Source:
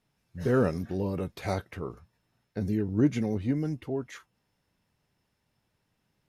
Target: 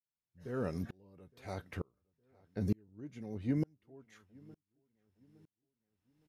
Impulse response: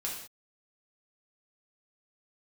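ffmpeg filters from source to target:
-filter_complex "[0:a]asplit=2[link_01][link_02];[link_02]adelay=863,lowpass=frequency=1900:poles=1,volume=-23.5dB,asplit=2[link_03][link_04];[link_04]adelay=863,lowpass=frequency=1900:poles=1,volume=0.45,asplit=2[link_05][link_06];[link_06]adelay=863,lowpass=frequency=1900:poles=1,volume=0.45[link_07];[link_01][link_03][link_05][link_07]amix=inputs=4:normalize=0,aeval=exprs='val(0)*pow(10,-37*if(lt(mod(-1.1*n/s,1),2*abs(-1.1)/1000),1-mod(-1.1*n/s,1)/(2*abs(-1.1)/1000),(mod(-1.1*n/s,1)-2*abs(-1.1)/1000)/(1-2*abs(-1.1)/1000))/20)':channel_layout=same"

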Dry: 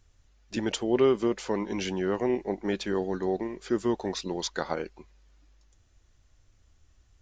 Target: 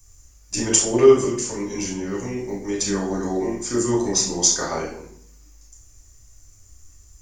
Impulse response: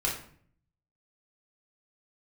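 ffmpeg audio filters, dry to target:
-filter_complex "[0:a]asettb=1/sr,asplit=3[link_01][link_02][link_03];[link_01]atrim=end=1.244[link_04];[link_02]atrim=start=1.24:end=2.76,asetpts=PTS-STARTPTS,afade=type=in:duration=0.004:curve=qsin,afade=type=out:start_time=1.516:duration=0.004:curve=qsin,acrossover=split=330|1900[link_05][link_06][link_07];[link_05]acompressor=threshold=-33dB:ratio=4[link_08];[link_06]acompressor=threshold=-41dB:ratio=4[link_09];[link_07]acompressor=threshold=-45dB:ratio=4[link_10];[link_08][link_09][link_10]amix=inputs=3:normalize=0[link_11];[link_03]atrim=start=2.756[link_12];[link_04][link_11]acrossfade=duration=0.004:curve1=hsin:curve2=qsin[link_13];[link_13][link_12]acrossfade=duration=0.004:curve1=qsin:curve2=hsin,acrossover=split=260|1300[link_14][link_15][link_16];[link_16]aexciter=amount=15.4:drive=3.2:freq=5600[link_17];[link_14][link_15][link_17]amix=inputs=3:normalize=0[link_18];[1:a]atrim=start_sample=2205,asetrate=37926,aresample=44100[link_19];[link_18][link_19]afir=irnorm=-1:irlink=0,volume=-2.5dB"

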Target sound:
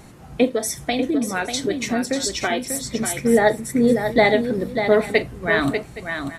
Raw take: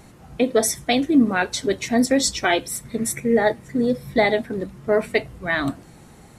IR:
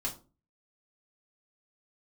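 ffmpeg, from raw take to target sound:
-filter_complex "[0:a]asplit=3[link_01][link_02][link_03];[link_01]afade=type=out:start_time=0.48:duration=0.02[link_04];[link_02]acompressor=threshold=-22dB:ratio=6,afade=type=in:start_time=0.48:duration=0.02,afade=type=out:start_time=3.17:duration=0.02[link_05];[link_03]afade=type=in:start_time=3.17:duration=0.02[link_06];[link_04][link_05][link_06]amix=inputs=3:normalize=0,aecho=1:1:42|592|818:0.133|0.422|0.126,volume=2.5dB"

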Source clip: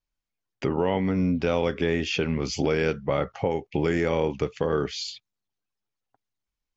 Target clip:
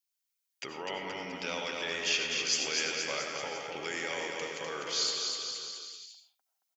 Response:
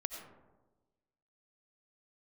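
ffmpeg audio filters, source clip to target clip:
-filter_complex "[0:a]aderivative,aecho=1:1:250|475|677.5|859.8|1024:0.631|0.398|0.251|0.158|0.1[link_01];[1:a]atrim=start_sample=2205,afade=type=out:start_time=0.25:duration=0.01,atrim=end_sample=11466[link_02];[link_01][link_02]afir=irnorm=-1:irlink=0,volume=8dB"

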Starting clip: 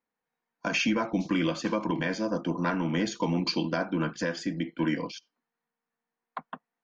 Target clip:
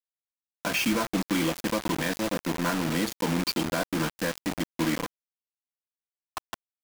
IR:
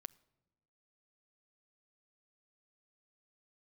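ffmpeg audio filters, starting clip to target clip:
-af "acrusher=bits=4:mix=0:aa=0.000001"

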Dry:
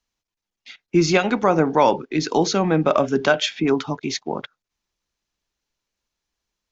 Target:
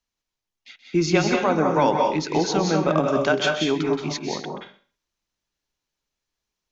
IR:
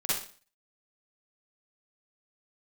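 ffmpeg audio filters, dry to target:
-filter_complex "[0:a]asplit=2[link_01][link_02];[1:a]atrim=start_sample=2205,adelay=128[link_03];[link_02][link_03]afir=irnorm=-1:irlink=0,volume=-9dB[link_04];[link_01][link_04]amix=inputs=2:normalize=0,volume=-4dB"

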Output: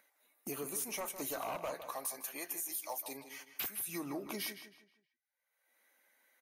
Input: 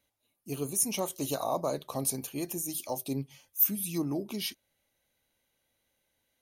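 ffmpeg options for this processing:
ffmpeg -i in.wav -filter_complex "[0:a]firequalizer=gain_entry='entry(1900,0);entry(2900,-19);entry(7100,-23)':delay=0.05:min_phase=1,agate=range=-49dB:threshold=-57dB:ratio=16:detection=peak,aderivative,acompressor=mode=upward:threshold=-54dB:ratio=2.5,asettb=1/sr,asplit=3[link_01][link_02][link_03];[link_01]atrim=end=1.744[link_04];[link_02]atrim=start=1.74:end=3.88,asetpts=PTS-STARTPTS,afade=type=in:duration=0.004:curve=qsin,afade=type=out:start_time=2.136:duration=0.004:curve=qsin,highpass=frequency=890:poles=1[link_05];[link_03]atrim=start=3.876[link_06];[link_04][link_05]acrossfade=duration=0.004:curve1=hsin:curve2=qsin[link_07];[link_07][link_06]acrossfade=duration=0.004:curve1=qsin:curve2=hsin,aeval=exprs='0.0282*sin(PI/2*5.01*val(0)/0.0282)':channel_layout=same,acompressor=threshold=-40dB:ratio=5,asplit=2[link_08][link_09];[link_09]adelay=158,lowpass=frequency=4800:poles=1,volume=-10dB,asplit=2[link_10][link_11];[link_11]adelay=158,lowpass=frequency=4800:poles=1,volume=0.36,asplit=2[link_12][link_13];[link_13]adelay=158,lowpass=frequency=4800:poles=1,volume=0.36,asplit=2[link_14][link_15];[link_15]adelay=158,lowpass=frequency=4800:poles=1,volume=0.36[link_16];[link_08][link_10][link_12][link_14][link_16]amix=inputs=5:normalize=0,volume=3dB" -ar 48000 -c:a libvorbis -b:a 48k out.ogg

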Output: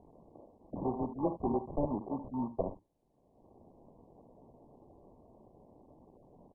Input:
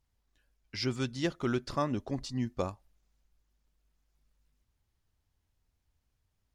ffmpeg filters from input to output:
ffmpeg -i in.wav -filter_complex "[0:a]acrossover=split=170 3800:gain=0.0708 1 0.126[link_01][link_02][link_03];[link_01][link_02][link_03]amix=inputs=3:normalize=0,bandreject=frequency=2300:width=17,adynamicequalizer=threshold=0.00282:dfrequency=650:dqfactor=3.8:tfrequency=650:tqfactor=3.8:attack=5:release=100:ratio=0.375:range=2.5:mode=cutabove:tftype=bell,acrossover=split=190[link_04][link_05];[link_05]acompressor=mode=upward:threshold=-34dB:ratio=2.5[link_06];[link_04][link_06]amix=inputs=2:normalize=0,acrusher=samples=38:mix=1:aa=0.000001,asplit=2[link_07][link_08];[link_08]aecho=0:1:55|73:0.141|0.224[link_09];[link_07][link_09]amix=inputs=2:normalize=0" -ar 24000 -c:a mp2 -b:a 8k out.mp2

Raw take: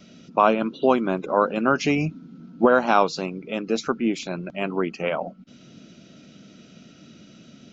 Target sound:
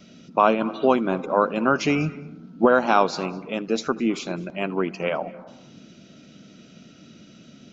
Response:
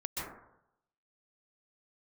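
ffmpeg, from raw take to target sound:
-filter_complex "[0:a]asplit=2[link_01][link_02];[1:a]atrim=start_sample=2205,adelay=79[link_03];[link_02][link_03]afir=irnorm=-1:irlink=0,volume=-20.5dB[link_04];[link_01][link_04]amix=inputs=2:normalize=0"

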